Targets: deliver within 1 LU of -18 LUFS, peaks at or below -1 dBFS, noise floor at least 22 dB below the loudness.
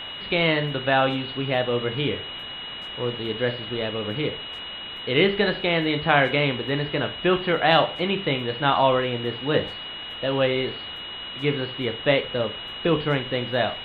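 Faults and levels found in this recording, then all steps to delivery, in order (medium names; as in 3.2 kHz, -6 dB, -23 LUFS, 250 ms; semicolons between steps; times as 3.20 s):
steady tone 2.9 kHz; tone level -34 dBFS; noise floor -36 dBFS; noise floor target -46 dBFS; loudness -24.0 LUFS; peak level -4.0 dBFS; loudness target -18.0 LUFS
-> band-stop 2.9 kHz, Q 30; noise print and reduce 10 dB; trim +6 dB; peak limiter -1 dBFS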